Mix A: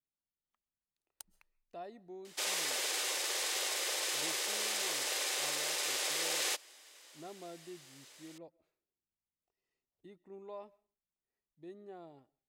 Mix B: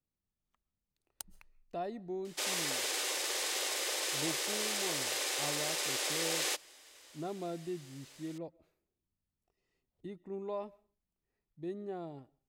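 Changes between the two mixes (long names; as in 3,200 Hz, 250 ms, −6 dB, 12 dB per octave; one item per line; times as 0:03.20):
speech +6.0 dB
master: add low-shelf EQ 240 Hz +10.5 dB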